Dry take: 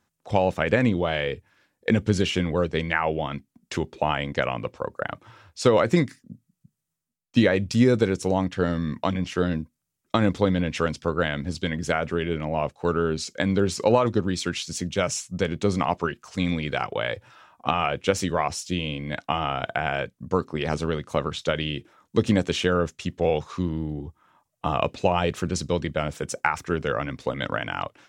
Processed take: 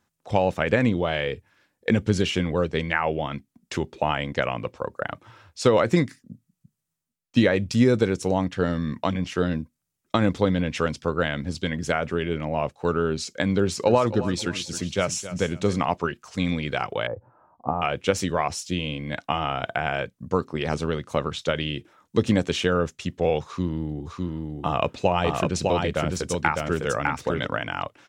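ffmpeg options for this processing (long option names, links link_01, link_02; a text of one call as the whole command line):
ffmpeg -i in.wav -filter_complex "[0:a]asettb=1/sr,asplit=3[link_01][link_02][link_03];[link_01]atrim=end=13.604[link_04];[link_02]atrim=start=13.6:end=15.78,asetpts=PTS-STARTPTS,afade=type=in:duration=0.004:curve=qsin,afade=type=out:start_time=2.176:duration=0.004:curve=qsin,aecho=1:1:268|536|804:0.211|0.0613|0.0178,atrim=end_sample=96138[link_05];[link_03]atrim=start=15.776[link_06];[link_04][link_05]acrossfade=duration=0.004:curve1=hsin:curve2=qsin[link_07];[link_07][link_06]acrossfade=duration=0.004:curve1=qsin:curve2=hsin,asettb=1/sr,asplit=3[link_08][link_09][link_10];[link_08]atrim=end=17.074[link_11];[link_09]atrim=start=17.07:end=17.82,asetpts=PTS-STARTPTS,afade=type=in:duration=0.004:curve=qsin,afade=type=out:start_time=0.746:duration=0.004:curve=qsin,lowpass=frequency=1000:width=0.5412,lowpass=frequency=1000:width=1.3066[link_12];[link_10]atrim=start=17.816[link_13];[link_11][link_12]acrossfade=duration=0.004:curve1=hsin:curve2=qsin[link_14];[link_14][link_13]acrossfade=duration=0.004:curve1=qsin:curve2=hsin,asplit=3[link_15][link_16][link_17];[link_15]afade=type=out:start_time=24.05:duration=0.02[link_18];[link_16]aecho=1:1:605:0.708,afade=type=in:start_time=24.05:duration=0.02,afade=type=out:start_time=27.45:duration=0.02[link_19];[link_17]afade=type=in:start_time=27.45:duration=0.02[link_20];[link_18][link_19][link_20]amix=inputs=3:normalize=0" out.wav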